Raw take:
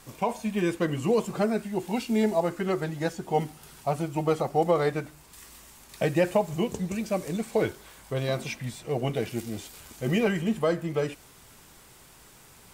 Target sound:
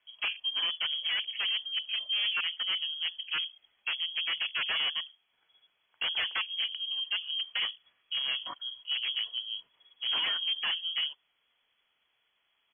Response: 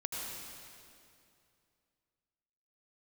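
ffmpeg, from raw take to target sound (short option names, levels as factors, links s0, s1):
-af "bandreject=f=60:t=h:w=6,bandreject=f=120:t=h:w=6,bandreject=f=180:t=h:w=6,bandreject=f=240:t=h:w=6,afwtdn=0.0178,aresample=11025,aeval=exprs='0.0794*(abs(mod(val(0)/0.0794+3,4)-2)-1)':c=same,aresample=44100,lowpass=f=2900:t=q:w=0.5098,lowpass=f=2900:t=q:w=0.6013,lowpass=f=2900:t=q:w=0.9,lowpass=f=2900:t=q:w=2.563,afreqshift=-3400,volume=0.708"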